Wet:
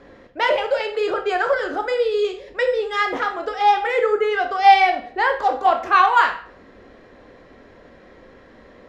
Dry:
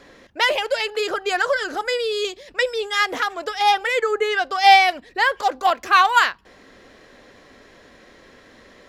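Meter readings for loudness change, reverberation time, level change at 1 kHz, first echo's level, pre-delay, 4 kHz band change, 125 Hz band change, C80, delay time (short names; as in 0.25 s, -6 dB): +0.5 dB, 0.50 s, +1.5 dB, none, 15 ms, -6.5 dB, n/a, 14.0 dB, none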